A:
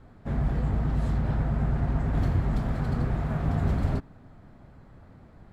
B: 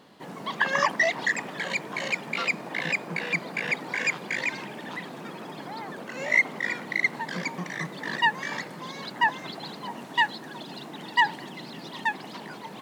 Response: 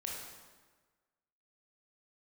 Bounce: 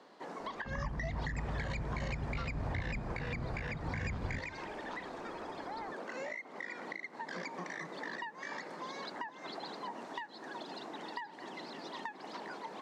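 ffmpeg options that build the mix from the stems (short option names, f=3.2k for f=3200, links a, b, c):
-filter_complex "[0:a]lowpass=3.3k,adelay=400,volume=-14.5dB,asplit=2[a][b];[b]volume=-10.5dB[c];[1:a]acrossover=split=280 7200:gain=0.126 1 0.0708[d][e][f];[d][e][f]amix=inputs=3:normalize=0,acompressor=threshold=-30dB:ratio=5,equalizer=f=3k:t=o:w=1:g=-7.5,volume=-1.5dB[g];[2:a]atrim=start_sample=2205[h];[c][h]afir=irnorm=-1:irlink=0[i];[a][g][i]amix=inputs=3:normalize=0,acrossover=split=310[j][k];[k]acompressor=threshold=-39dB:ratio=6[l];[j][l]amix=inputs=2:normalize=0"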